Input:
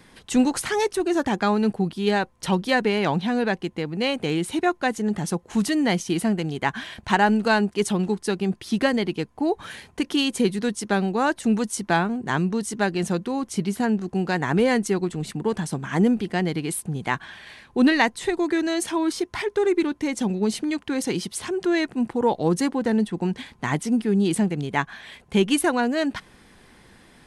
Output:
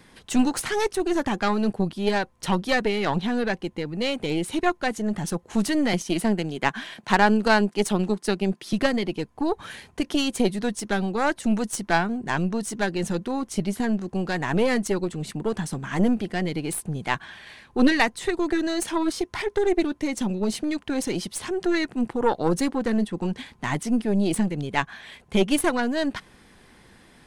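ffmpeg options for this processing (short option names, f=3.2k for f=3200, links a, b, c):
-filter_complex "[0:a]asettb=1/sr,asplit=3[a][b][c];[a]atrim=end=5.934[d];[b]atrim=start=5.93:end=8.73,asetpts=PTS-STARTPTS,afade=t=in:d=0.004:c=qsin,afade=t=out:st=2.796:d=0.004:c=qsin,highpass=f=150:w=0.5412,highpass=f=150:w=1.3066[e];[c]atrim=start=8.726[f];[d][e]acrossfade=d=0.004:c1=hsin:c2=qsin[g];[g][f]acrossfade=d=0.004:c1=qsin:c2=hsin,aeval=exprs='0.75*(cos(1*acos(clip(val(0)/0.75,-1,1)))-cos(1*PI/2))+0.0944*(cos(6*acos(clip(val(0)/0.75,-1,1)))-cos(6*PI/2))':c=same,volume=-1dB"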